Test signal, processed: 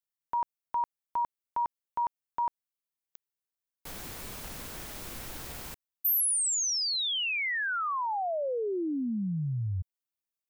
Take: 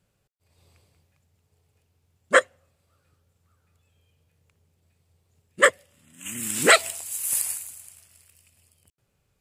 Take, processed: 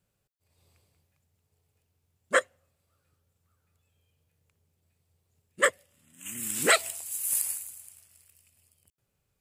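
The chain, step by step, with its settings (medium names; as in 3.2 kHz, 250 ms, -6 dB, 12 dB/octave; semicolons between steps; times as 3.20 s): treble shelf 11 kHz +8.5 dB; trim -6.5 dB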